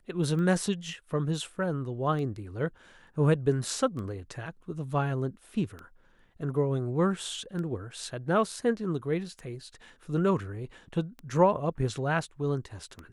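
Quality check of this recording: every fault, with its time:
tick 33 1/3 rpm -27 dBFS

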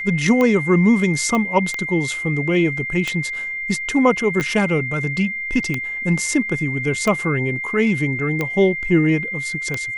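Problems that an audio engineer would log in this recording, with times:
tick 45 rpm -9 dBFS
tone 2100 Hz -24 dBFS
1.35 pop -10 dBFS
4.4 gap 2.9 ms

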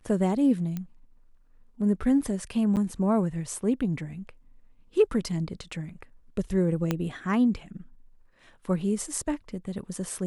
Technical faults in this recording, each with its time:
0.77 pop -20 dBFS
2.76–2.77 gap 8.7 ms
6.91 pop -12 dBFS

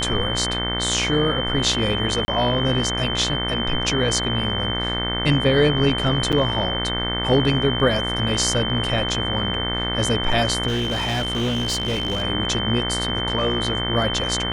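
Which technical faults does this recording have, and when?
buzz 60 Hz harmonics 37 -27 dBFS
tone 3100 Hz -25 dBFS
2.25–2.28 gap 30 ms
6.32–6.33 gap 7.1 ms
10.67–12.22 clipped -19 dBFS

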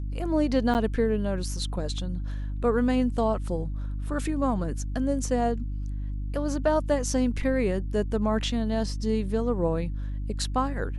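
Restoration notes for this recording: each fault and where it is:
hum 50 Hz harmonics 6 -31 dBFS
0.74–0.75 gap 9.1 ms

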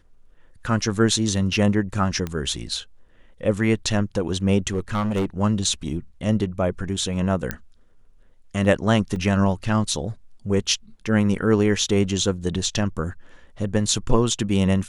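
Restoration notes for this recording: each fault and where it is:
2.27 pop -15 dBFS
4.72–5.26 clipped -19 dBFS
7.51 pop -10 dBFS
9.16 gap 2.2 ms

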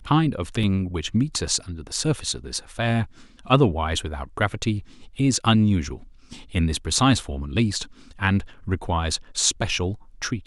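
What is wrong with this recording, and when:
0.63 gap 4.3 ms

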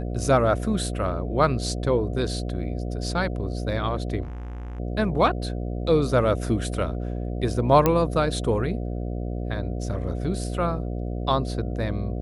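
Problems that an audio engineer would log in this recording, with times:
buzz 60 Hz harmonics 12 -29 dBFS
4.22–4.8 clipped -32 dBFS
7.86 pop -6 dBFS

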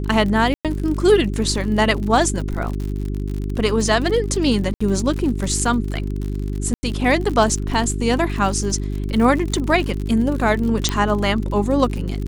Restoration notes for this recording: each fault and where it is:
crackle 63/s -26 dBFS
hum 50 Hz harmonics 8 -24 dBFS
0.54–0.65 gap 0.107 s
4.74–4.8 gap 65 ms
6.74–6.83 gap 90 ms
10.89 pop -5 dBFS

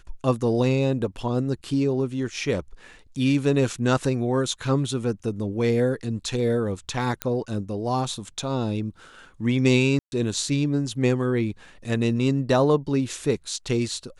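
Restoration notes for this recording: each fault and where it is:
7.22 pop -9 dBFS
9.99–10.12 gap 0.131 s

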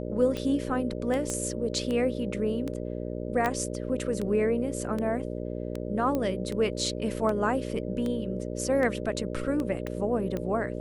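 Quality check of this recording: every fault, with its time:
buzz 60 Hz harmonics 10 -34 dBFS
tick 78 rpm -20 dBFS
1.3 pop -19 dBFS
3.46 pop -14 dBFS
6.15 pop -17 dBFS
9.87 pop -21 dBFS

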